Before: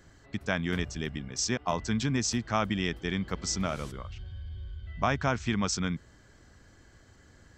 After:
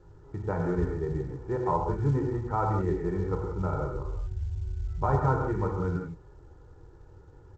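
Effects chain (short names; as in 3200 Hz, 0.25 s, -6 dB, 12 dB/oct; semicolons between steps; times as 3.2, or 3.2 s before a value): inverse Chebyshev low-pass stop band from 3800 Hz, stop band 60 dB; notch 560 Hz, Q 12; comb 2.2 ms, depth 93%; non-linear reverb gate 0.21 s flat, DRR 0 dB; µ-law 128 kbps 16000 Hz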